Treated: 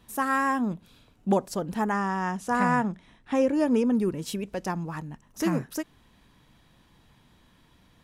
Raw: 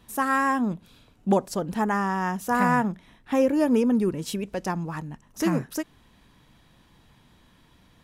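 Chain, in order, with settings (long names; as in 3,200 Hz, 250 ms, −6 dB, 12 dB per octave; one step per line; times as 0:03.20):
0:01.92–0:03.93: low-pass filter 10,000 Hz 24 dB per octave
level −2 dB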